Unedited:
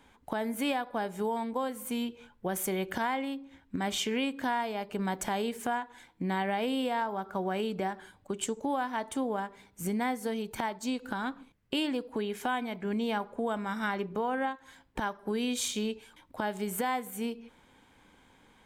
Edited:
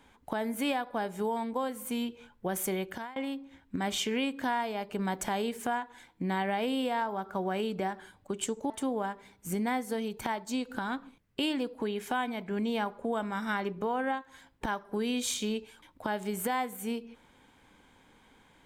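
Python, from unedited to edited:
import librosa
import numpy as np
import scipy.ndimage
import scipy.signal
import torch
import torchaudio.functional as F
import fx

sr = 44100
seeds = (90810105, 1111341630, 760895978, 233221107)

y = fx.edit(x, sr, fx.fade_out_to(start_s=2.73, length_s=0.43, floor_db=-22.0),
    fx.cut(start_s=8.7, length_s=0.34), tone=tone)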